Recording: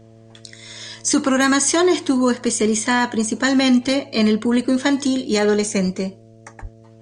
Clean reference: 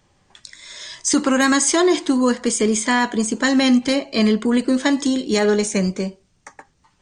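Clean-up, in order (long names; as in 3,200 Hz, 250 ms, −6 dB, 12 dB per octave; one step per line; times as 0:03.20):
hum removal 112.3 Hz, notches 6
0:06.61–0:06.73: high-pass filter 140 Hz 24 dB per octave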